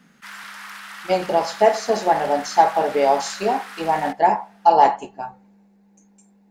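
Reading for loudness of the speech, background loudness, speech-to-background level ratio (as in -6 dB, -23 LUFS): -19.5 LUFS, -36.0 LUFS, 16.5 dB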